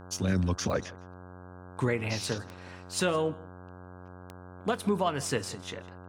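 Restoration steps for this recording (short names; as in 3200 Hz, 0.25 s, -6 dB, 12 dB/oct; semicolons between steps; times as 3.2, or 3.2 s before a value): de-click; de-hum 90.7 Hz, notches 18; inverse comb 0.16 s -22 dB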